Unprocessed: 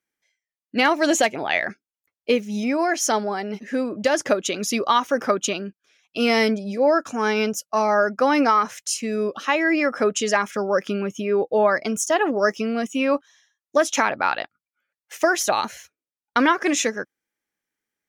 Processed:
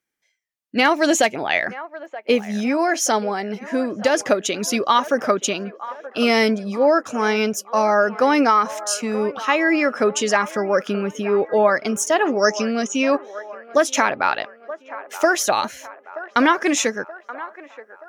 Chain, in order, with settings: 12.23–13.12 s: resonant low-pass 6.3 kHz, resonance Q 4.4; on a send: feedback echo behind a band-pass 927 ms, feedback 53%, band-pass 920 Hz, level -14.5 dB; on the sum: trim +2 dB

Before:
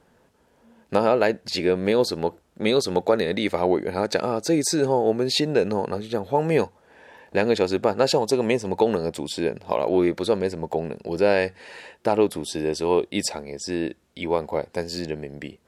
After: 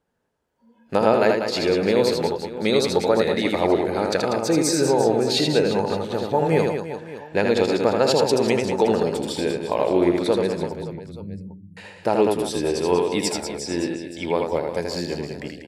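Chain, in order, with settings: 10.71–11.77 s: inverse Chebyshev band-stop 880–4400 Hz, stop band 80 dB; reverse bouncing-ball echo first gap 80 ms, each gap 1.4×, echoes 5; spectral noise reduction 16 dB

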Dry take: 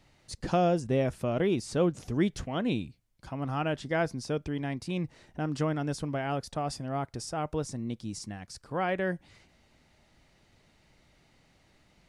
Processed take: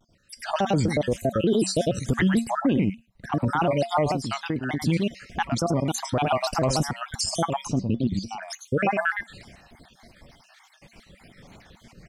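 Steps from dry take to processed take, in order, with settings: random holes in the spectrogram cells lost 66%; 2.50–3.33 s: treble shelf 4 kHz -12 dB; delay 110 ms -7.5 dB; 4.09–4.87 s: compression 6:1, threshold -39 dBFS, peak gain reduction 10.5 dB; 7.66–8.43 s: distance through air 210 m; feedback comb 210 Hz, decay 0.22 s, harmonics odd, mix 60%; level rider gain up to 15.5 dB; peak limiter -21 dBFS, peak gain reduction 13.5 dB; vibrato with a chosen wave square 3.4 Hz, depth 160 cents; trim +7.5 dB

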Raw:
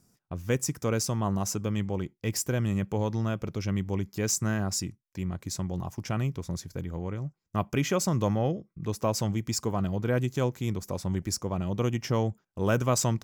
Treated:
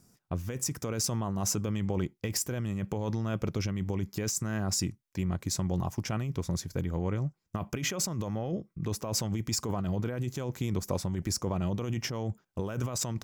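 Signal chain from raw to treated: compressor with a negative ratio -31 dBFS, ratio -1

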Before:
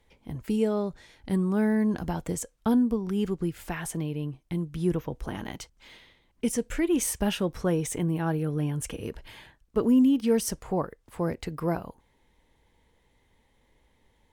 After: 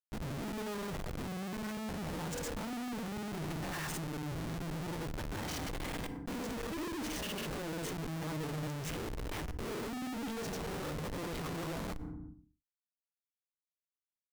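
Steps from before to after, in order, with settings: reverse spectral sustain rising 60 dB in 0.35 s; low-pass 7 kHz 12 dB/octave; de-hum 153.3 Hz, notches 37; low-pass that closes with the level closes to 2.4 kHz, closed at -20 dBFS; peak limiter -20.5 dBFS, peak gain reduction 8 dB; saturation -37 dBFS, distortion -5 dB; granulator 100 ms, grains 20 per s; Schmitt trigger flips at -48.5 dBFS; FDN reverb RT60 0.39 s, low-frequency decay 1.45×, high-frequency decay 0.6×, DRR 16 dB; decay stretcher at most 26 dB/s; trim +3 dB

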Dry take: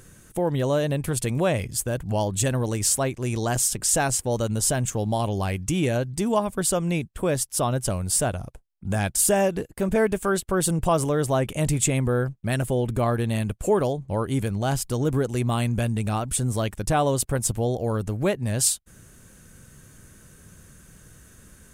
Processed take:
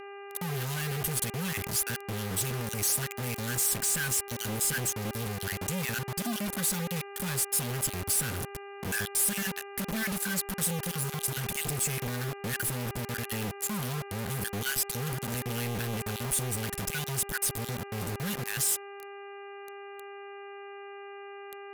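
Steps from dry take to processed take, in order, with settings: random holes in the spectrogram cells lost 24%; peak limiter -20 dBFS, peak gain reduction 10.5 dB; FFT band-reject 250–1400 Hz; companded quantiser 2-bit; bass shelf 160 Hz -9 dB; mains buzz 400 Hz, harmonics 7, -41 dBFS -5 dB/octave; peaking EQ 12 kHz +9 dB 0.39 oct; trim -3 dB

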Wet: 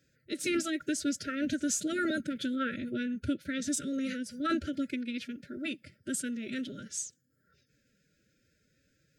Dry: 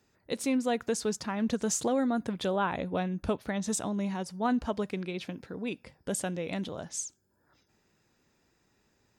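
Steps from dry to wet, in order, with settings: brick-wall FIR band-stop 470–1000 Hz; formant-preserving pitch shift +5 st

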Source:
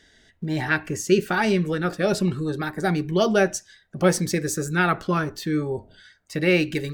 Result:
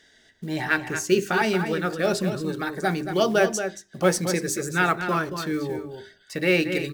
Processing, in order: short-mantissa float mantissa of 4-bit; bass shelf 130 Hz -10.5 dB; hum notches 50/100/150/200/250/300/350/400 Hz; echo from a far wall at 39 m, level -8 dB

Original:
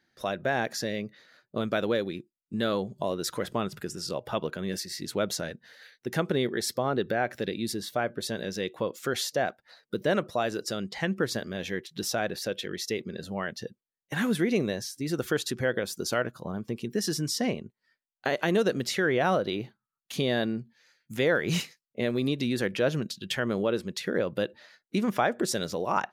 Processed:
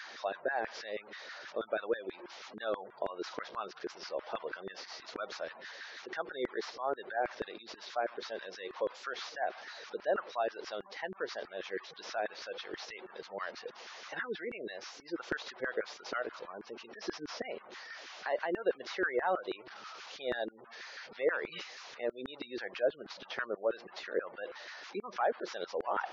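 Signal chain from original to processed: one-bit delta coder 32 kbps, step -34 dBFS; spectral gate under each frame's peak -25 dB strong; LFO high-pass saw down 6.2 Hz 350–1600 Hz; trim -9 dB

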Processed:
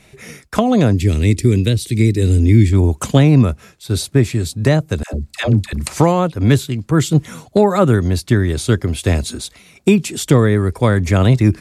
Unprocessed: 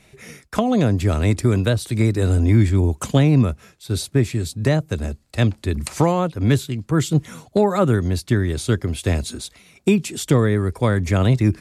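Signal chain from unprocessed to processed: 0.93–2.73 s: high-order bell 940 Hz -15.5 dB; 5.03–5.73 s: phase dispersion lows, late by 103 ms, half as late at 600 Hz; trim +4.5 dB

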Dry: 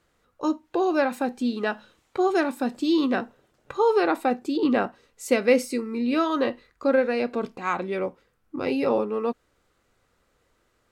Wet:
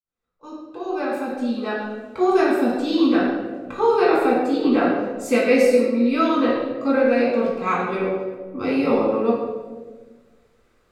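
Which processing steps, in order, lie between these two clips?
fade-in on the opening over 2.20 s; reverberation RT60 1.4 s, pre-delay 5 ms, DRR -6 dB; trim -5 dB

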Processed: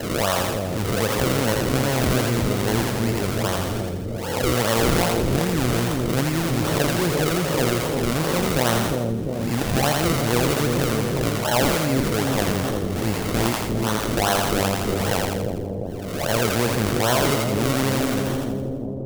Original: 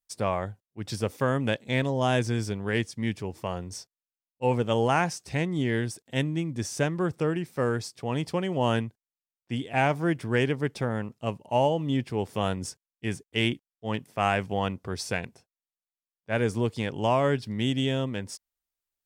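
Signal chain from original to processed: reverse spectral sustain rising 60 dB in 0.71 s; decimation with a swept rate 36×, swing 100% 2.5 Hz; treble shelf 4.4 kHz +4.5 dB; two-band feedback delay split 580 Hz, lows 350 ms, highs 83 ms, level -4.5 dB; level flattener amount 50%

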